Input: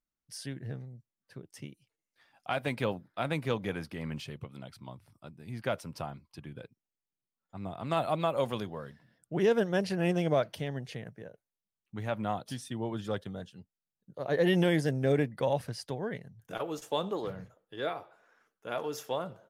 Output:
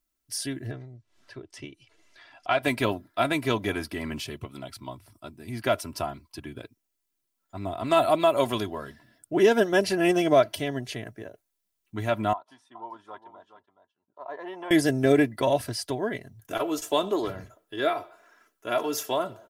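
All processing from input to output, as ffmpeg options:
-filter_complex "[0:a]asettb=1/sr,asplit=3[a][b][c];[a]atrim=end=0.714[d];[b]atrim=start=0.71:end=2.63,asetpts=PTS-STARTPTS,afade=t=in:d=0.004:c=qsin,afade=t=out:st=1.916:d=0.004:c=qsin,lowpass=4.4k,equalizer=f=220:t=o:w=0.93:g=-6.5,acompressor=mode=upward:threshold=-51dB:ratio=2.5:attack=3.2:release=140:knee=2.83:detection=peak[e];[c]atrim=start=2.626[f];[d][e]acrossfade=d=0.004:c1=hsin:c2=qsin[g];[g][f]acrossfade=d=0.004:c1=qsin:c2=hsin,asettb=1/sr,asplit=3[h][i][j];[h]atrim=end=12.334[k];[i]atrim=start=12.33:end=14.71,asetpts=PTS-STARTPTS,afade=t=in:d=0.004:c=qsin,afade=t=out:st=2.376:d=0.004:c=qsin,bandpass=f=960:t=q:w=4.9,aecho=1:1:420:0.266,atrim=end_sample=104958[l];[j]atrim=start=14.706[m];[k][l]acrossfade=d=0.004:c1=hsin:c2=qsin[n];[n][m]acrossfade=d=0.004:c1=qsin:c2=hsin,highshelf=f=6.6k:g=7.5,aecho=1:1:3:0.71,volume=6dB"

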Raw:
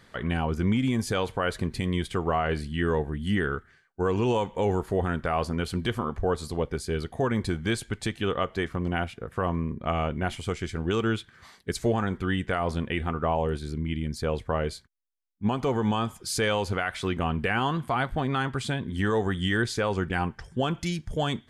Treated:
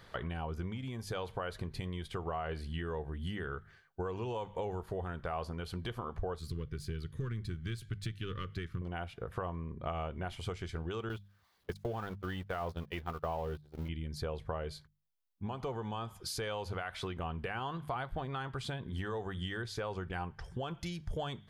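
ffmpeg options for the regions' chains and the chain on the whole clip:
-filter_complex "[0:a]asettb=1/sr,asplit=3[a][b][c];[a]atrim=end=6.394[d];[b]atrim=start=6.39:end=8.82,asetpts=PTS-STARTPTS,afade=t=in:d=0.004:c=qsin,afade=t=out:st=2.426:d=0.004:c=qsin,aeval=exprs='if(lt(val(0),0),0.708*val(0),val(0))':c=same,asuperstop=centerf=720:order=4:qfactor=0.75,equalizer=f=120:t=o:w=0.94:g=8[e];[c]atrim=start=8.816[f];[d][e]acrossfade=d=0.004:c1=hsin:c2=qsin[g];[g][f]acrossfade=d=0.004:c1=qsin:c2=hsin,asettb=1/sr,asplit=3[h][i][j];[h]atrim=end=11.094[k];[i]atrim=start=11.09:end=13.89,asetpts=PTS-STARTPTS,afade=t=in:d=0.004:c=qsin,afade=t=out:st=2.796:d=0.004:c=qsin,aeval=exprs='val(0)+0.5*0.0158*sgn(val(0))':c=same,agate=range=-32dB:threshold=-28dB:ratio=16:release=100:detection=peak[l];[j]atrim=start=13.886[m];[k][l]acrossfade=d=0.004:c1=hsin:c2=qsin[n];[n][m]acrossfade=d=0.004:c1=qsin:c2=hsin,bandreject=f=50:t=h:w=6,bandreject=f=100:t=h:w=6,bandreject=f=150:t=h:w=6,bandreject=f=200:t=h:w=6,acompressor=threshold=-35dB:ratio=6,equalizer=f=250:t=o:w=1:g=-9,equalizer=f=2k:t=o:w=1:g=-5,equalizer=f=8k:t=o:w=1:g=-9,volume=2.5dB"

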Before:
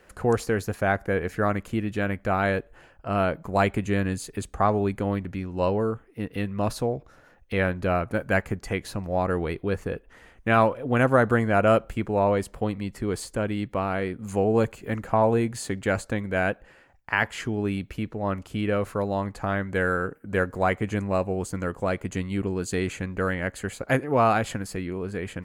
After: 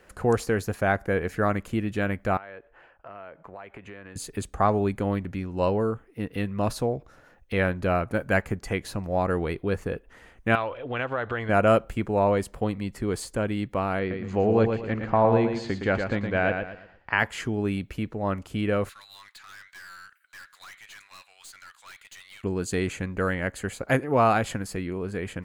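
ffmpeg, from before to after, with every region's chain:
-filter_complex "[0:a]asettb=1/sr,asplit=3[a][b][c];[a]atrim=end=2.374[d];[b]atrim=start=2.37:end=4.16,asetpts=PTS-STARTPTS,afade=t=in:d=0.004:c=qsin,afade=t=out:st=1.786:d=0.004:c=qsin,acrossover=split=420 3100:gain=0.224 1 0.0891[e][f][g];[e][f][g]amix=inputs=3:normalize=0,acompressor=threshold=-39dB:ratio=6:attack=3.2:release=140:knee=1:detection=peak[h];[c]atrim=start=4.156[i];[d][h]acrossfade=d=0.004:c1=hsin:c2=qsin[j];[j][i]acrossfade=d=0.004:c1=qsin:c2=hsin,asettb=1/sr,asplit=3[k][l][m];[k]atrim=end=10.554[n];[l]atrim=start=10.55:end=11.49,asetpts=PTS-STARTPTS,afade=t=in:d=0.004:c=qsin,afade=t=out:st=0.936:d=0.004:c=qsin,equalizer=f=190:t=o:w=1.2:g=-12.5,acompressor=threshold=-28dB:ratio=2.5:attack=3.2:release=140:knee=1:detection=peak,lowpass=f=3.3k:t=q:w=2.5[o];[m]atrim=start=11.486[p];[n][o]acrossfade=d=0.004:c1=hsin:c2=qsin[q];[q][p]acrossfade=d=0.004:c1=qsin:c2=hsin,asettb=1/sr,asplit=3[r][s][t];[r]atrim=end=13.994[u];[s]atrim=start=13.99:end=17.19,asetpts=PTS-STARTPTS,afade=t=in:d=0.004:c=qsin,afade=t=out:st=3.196:d=0.004:c=qsin,lowpass=f=4.8k:w=0.5412,lowpass=f=4.8k:w=1.3066,aecho=1:1:115|230|345|460:0.501|0.165|0.0546|0.018,atrim=end_sample=141120[v];[t]atrim=start=17.186[w];[u][v]acrossfade=d=0.004:c1=hsin:c2=qsin[x];[x][w]acrossfade=d=0.004:c1=qsin:c2=hsin,asettb=1/sr,asplit=3[y][z][aa];[y]atrim=end=18.894[ab];[z]atrim=start=18.89:end=22.44,asetpts=PTS-STARTPTS,afade=t=in:d=0.004:c=qsin,afade=t=out:st=3.546:d=0.004:c=qsin,highpass=f=1.5k:w=0.5412,highpass=f=1.5k:w=1.3066,equalizer=f=3.8k:t=o:w=0.58:g=13,aeval=exprs='(tanh(141*val(0)+0.2)-tanh(0.2))/141':c=same[ac];[aa]atrim=start=22.436[ad];[ab][ac]acrossfade=d=0.004:c1=hsin:c2=qsin[ae];[ae][ad]acrossfade=d=0.004:c1=qsin:c2=hsin"

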